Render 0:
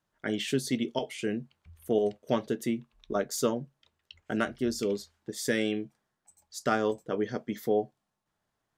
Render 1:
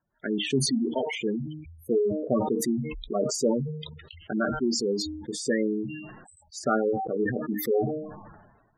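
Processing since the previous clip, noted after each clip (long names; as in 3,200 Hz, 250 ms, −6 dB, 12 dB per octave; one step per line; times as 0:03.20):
hum removal 153.8 Hz, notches 22
gate on every frequency bin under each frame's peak −10 dB strong
level that may fall only so fast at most 49 dB per second
level +3 dB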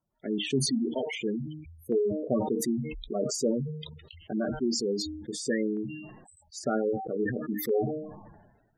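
auto-filter notch saw down 0.52 Hz 750–1,700 Hz
level −2 dB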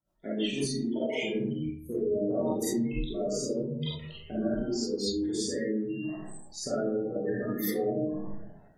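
downward compressor, threshold −32 dBFS, peak gain reduction 10.5 dB
comb and all-pass reverb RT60 0.74 s, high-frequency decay 0.4×, pre-delay 5 ms, DRR −9.5 dB
rotating-speaker cabinet horn 6.3 Hz, later 0.8 Hz, at 0:00.34
level −2.5 dB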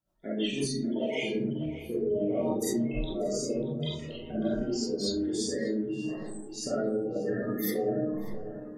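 tape delay 591 ms, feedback 62%, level −11.5 dB, low-pass 2,200 Hz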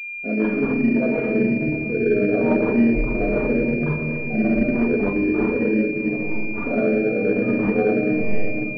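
rectangular room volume 3,800 cubic metres, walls mixed, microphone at 1.8 metres
switching amplifier with a slow clock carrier 2,400 Hz
level +7.5 dB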